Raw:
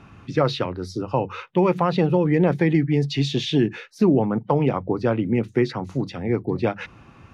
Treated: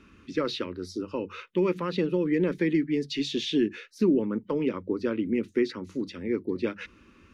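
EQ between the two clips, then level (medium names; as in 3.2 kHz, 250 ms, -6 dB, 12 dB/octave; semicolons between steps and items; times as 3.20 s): static phaser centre 310 Hz, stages 4; -3.5 dB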